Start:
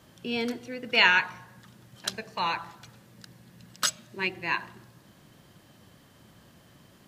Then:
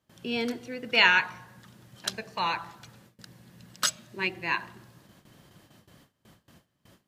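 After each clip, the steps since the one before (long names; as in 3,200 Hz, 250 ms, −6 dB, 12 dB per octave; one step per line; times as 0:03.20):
noise gate with hold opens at −45 dBFS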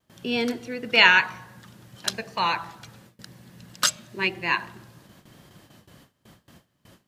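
pitch vibrato 0.97 Hz 28 cents
level +4.5 dB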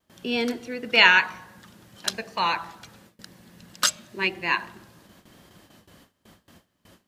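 parametric band 130 Hz −12 dB 0.34 octaves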